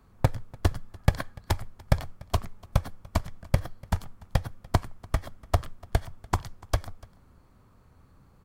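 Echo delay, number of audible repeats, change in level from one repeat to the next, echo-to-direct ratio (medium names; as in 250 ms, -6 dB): 292 ms, 1, no regular repeats, -23.5 dB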